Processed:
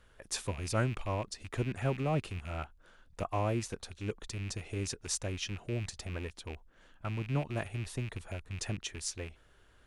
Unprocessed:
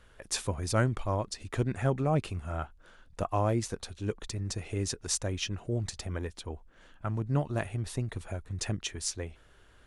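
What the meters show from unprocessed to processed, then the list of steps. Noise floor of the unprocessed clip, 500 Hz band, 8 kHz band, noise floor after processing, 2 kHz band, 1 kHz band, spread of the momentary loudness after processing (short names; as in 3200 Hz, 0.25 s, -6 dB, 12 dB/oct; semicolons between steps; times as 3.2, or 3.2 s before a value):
-59 dBFS, -4.0 dB, -4.0 dB, -63 dBFS, -1.5 dB, -4.0 dB, 10 LU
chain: rattling part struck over -38 dBFS, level -31 dBFS; gain -4 dB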